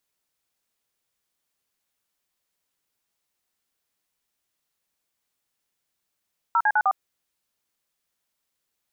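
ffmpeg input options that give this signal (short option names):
-f lavfi -i "aevalsrc='0.106*clip(min(mod(t,0.102),0.056-mod(t,0.102))/0.002,0,1)*(eq(floor(t/0.102),0)*(sin(2*PI*941*mod(t,0.102))+sin(2*PI*1336*mod(t,0.102)))+eq(floor(t/0.102),1)*(sin(2*PI*852*mod(t,0.102))+sin(2*PI*1633*mod(t,0.102)))+eq(floor(t/0.102),2)*(sin(2*PI*852*mod(t,0.102))+sin(2*PI*1477*mod(t,0.102)))+eq(floor(t/0.102),3)*(sin(2*PI*770*mod(t,0.102))+sin(2*PI*1209*mod(t,0.102))))':d=0.408:s=44100"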